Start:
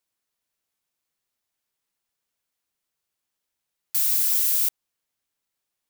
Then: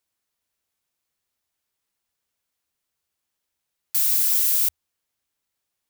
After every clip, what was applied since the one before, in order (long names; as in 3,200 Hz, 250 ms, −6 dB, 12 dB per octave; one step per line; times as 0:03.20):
parametric band 77 Hz +8 dB 0.37 octaves
level +1.5 dB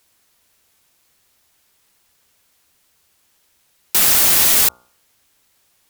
hum removal 61.13 Hz, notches 24
sine wavefolder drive 16 dB, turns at −7 dBFS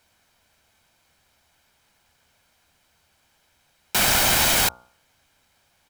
low-pass filter 2,700 Hz 6 dB per octave
comb filter 1.3 ms, depth 39%
level +2.5 dB